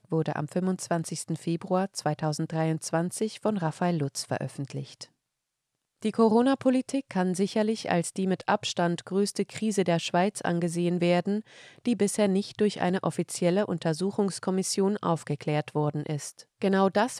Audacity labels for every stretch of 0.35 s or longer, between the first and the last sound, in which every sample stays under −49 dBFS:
5.060000	6.010000	silence